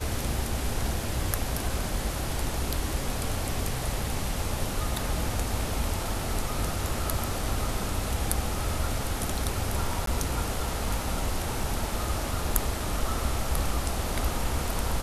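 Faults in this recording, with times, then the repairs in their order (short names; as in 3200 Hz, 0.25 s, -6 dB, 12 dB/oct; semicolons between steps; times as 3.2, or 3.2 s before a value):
10.06–10.07 gap 13 ms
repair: interpolate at 10.06, 13 ms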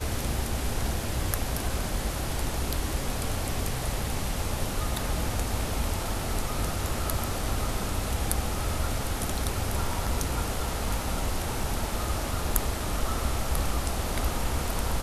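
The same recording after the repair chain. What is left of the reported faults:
none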